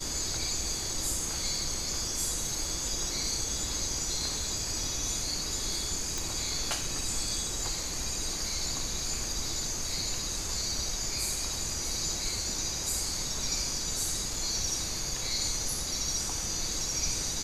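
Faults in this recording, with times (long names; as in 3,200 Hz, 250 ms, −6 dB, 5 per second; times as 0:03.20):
0:06.18: click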